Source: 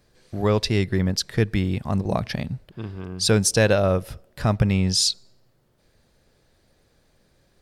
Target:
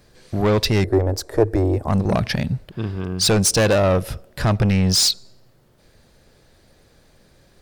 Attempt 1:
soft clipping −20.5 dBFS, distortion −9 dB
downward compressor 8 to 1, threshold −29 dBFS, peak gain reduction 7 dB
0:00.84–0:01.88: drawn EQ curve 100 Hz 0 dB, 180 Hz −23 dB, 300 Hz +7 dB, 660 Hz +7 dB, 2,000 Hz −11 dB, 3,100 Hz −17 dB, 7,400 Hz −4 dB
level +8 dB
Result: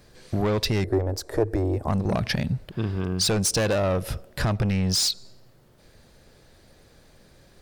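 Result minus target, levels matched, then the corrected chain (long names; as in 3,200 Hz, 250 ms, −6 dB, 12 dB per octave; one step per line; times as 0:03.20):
downward compressor: peak gain reduction +7 dB
soft clipping −20.5 dBFS, distortion −9 dB
0:00.84–0:01.88: drawn EQ curve 100 Hz 0 dB, 180 Hz −23 dB, 300 Hz +7 dB, 660 Hz +7 dB, 2,000 Hz −11 dB, 3,100 Hz −17 dB, 7,400 Hz −4 dB
level +8 dB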